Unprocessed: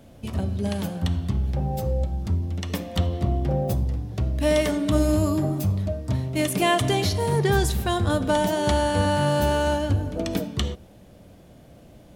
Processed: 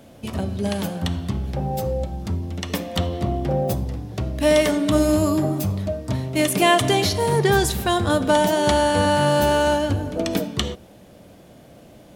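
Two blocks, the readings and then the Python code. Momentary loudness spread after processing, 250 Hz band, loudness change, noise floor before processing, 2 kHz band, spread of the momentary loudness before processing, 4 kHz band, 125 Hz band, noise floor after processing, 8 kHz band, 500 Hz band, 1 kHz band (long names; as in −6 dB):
10 LU, +3.0 dB, +3.0 dB, −49 dBFS, +5.0 dB, 7 LU, +5.0 dB, −1.0 dB, −47 dBFS, +5.0 dB, +4.5 dB, +5.0 dB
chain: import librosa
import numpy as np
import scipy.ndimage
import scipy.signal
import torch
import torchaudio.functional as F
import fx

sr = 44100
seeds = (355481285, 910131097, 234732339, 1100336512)

y = fx.low_shelf(x, sr, hz=110.0, db=-11.5)
y = y * 10.0 ** (5.0 / 20.0)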